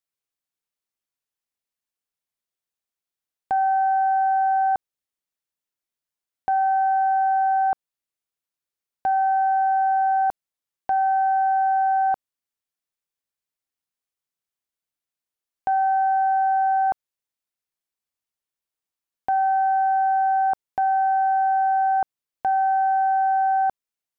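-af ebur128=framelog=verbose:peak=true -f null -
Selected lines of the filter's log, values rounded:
Integrated loudness:
  I:         -21.2 LUFS
  Threshold: -31.5 LUFS
Loudness range:
  LRA:         5.7 LU
  Threshold: -43.7 LUFS
  LRA low:   -27.0 LUFS
  LRA high:  -21.3 LUFS
True peak:
  Peak:      -16.7 dBFS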